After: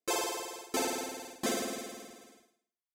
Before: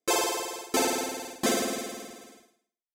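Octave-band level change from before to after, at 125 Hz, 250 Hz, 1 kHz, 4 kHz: -6.5, -6.5, -6.5, -6.5 dB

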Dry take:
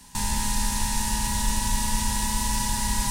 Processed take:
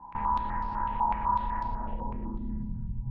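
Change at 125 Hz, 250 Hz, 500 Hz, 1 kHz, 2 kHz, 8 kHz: -6.5 dB, -7.0 dB, -1.0 dB, +2.0 dB, -13.0 dB, under -40 dB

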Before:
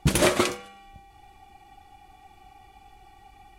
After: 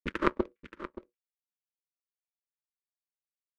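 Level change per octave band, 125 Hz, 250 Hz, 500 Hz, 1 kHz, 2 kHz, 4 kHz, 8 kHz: -18.0 dB, -7.5 dB, -9.0 dB, -6.0 dB, -8.5 dB, -19.0 dB, under -30 dB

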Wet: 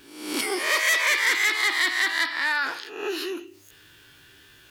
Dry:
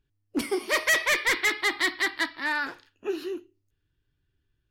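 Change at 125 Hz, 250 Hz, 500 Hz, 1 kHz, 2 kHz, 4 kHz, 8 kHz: n/a, -1.5 dB, -1.0 dB, +2.5 dB, +3.5 dB, +4.5 dB, +4.5 dB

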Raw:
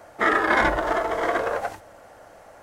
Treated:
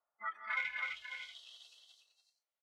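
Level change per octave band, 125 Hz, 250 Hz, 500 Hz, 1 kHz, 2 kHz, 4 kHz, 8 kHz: under -40 dB, under -40 dB, under -40 dB, -23.5 dB, -15.0 dB, -11.5 dB, -19.5 dB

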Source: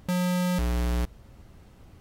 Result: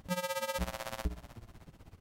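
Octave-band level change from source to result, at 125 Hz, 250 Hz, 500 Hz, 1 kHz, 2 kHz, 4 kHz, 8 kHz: -14.5, -16.0, -4.0, -3.5, -3.5, -3.5, -3.5 dB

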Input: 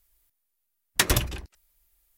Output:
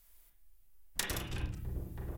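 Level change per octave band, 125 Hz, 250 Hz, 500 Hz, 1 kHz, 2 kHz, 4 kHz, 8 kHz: -7.5, -8.5, -11.5, -13.0, -13.0, -13.0, -13.0 dB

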